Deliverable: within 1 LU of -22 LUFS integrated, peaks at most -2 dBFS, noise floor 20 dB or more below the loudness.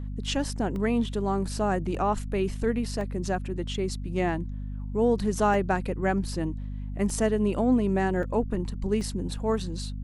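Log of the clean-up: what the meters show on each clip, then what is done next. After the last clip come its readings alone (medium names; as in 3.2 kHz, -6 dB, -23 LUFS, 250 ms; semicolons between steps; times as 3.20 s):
dropouts 7; longest dropout 1.2 ms; hum 50 Hz; highest harmonic 250 Hz; hum level -31 dBFS; loudness -28.0 LUFS; peak level -11.5 dBFS; loudness target -22.0 LUFS
-> interpolate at 0.76/1.95/3.01/5.54/7.10/8.23/9.01 s, 1.2 ms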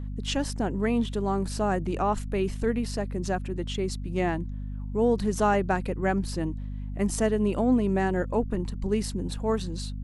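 dropouts 0; hum 50 Hz; highest harmonic 250 Hz; hum level -31 dBFS
-> hum notches 50/100/150/200/250 Hz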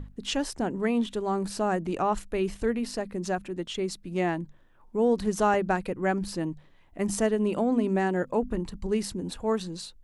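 hum not found; loudness -28.5 LUFS; peak level -12.0 dBFS; loudness target -22.0 LUFS
-> trim +6.5 dB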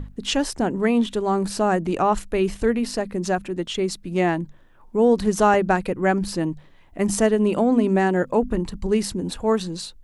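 loudness -22.0 LUFS; peak level -5.5 dBFS; noise floor -49 dBFS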